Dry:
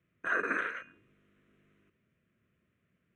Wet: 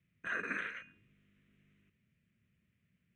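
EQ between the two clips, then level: high-order bell 660 Hz -11 dB 2.7 oct; treble shelf 5.9 kHz -7 dB; +1.0 dB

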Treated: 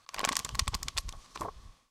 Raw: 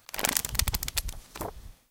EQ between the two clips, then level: low-pass 5.6 kHz 12 dB/octave; peaking EQ 1.1 kHz +14 dB 0.26 oct; treble shelf 4 kHz +9 dB; -6.0 dB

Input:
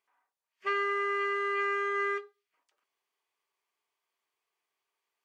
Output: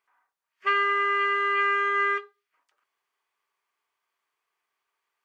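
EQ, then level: dynamic bell 3 kHz, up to +7 dB, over -52 dBFS, Q 2.1; peaking EQ 1.4 kHz +8 dB 1.4 oct; 0.0 dB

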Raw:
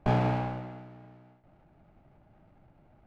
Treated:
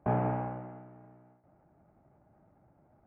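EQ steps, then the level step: Gaussian low-pass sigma 5.1 samples; high-pass 53 Hz; bass shelf 250 Hz -6 dB; 0.0 dB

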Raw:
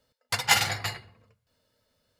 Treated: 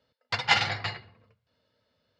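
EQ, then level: high-pass 74 Hz; low-pass 4.7 kHz 24 dB/octave; 0.0 dB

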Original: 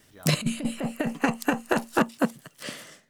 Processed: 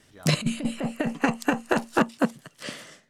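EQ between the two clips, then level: distance through air 60 m; treble shelf 8.4 kHz +8.5 dB; +1.0 dB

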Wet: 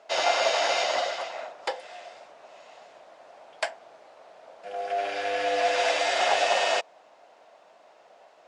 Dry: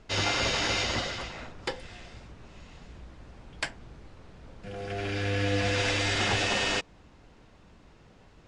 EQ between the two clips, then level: resonant high-pass 650 Hz, resonance Q 4.9; 0.0 dB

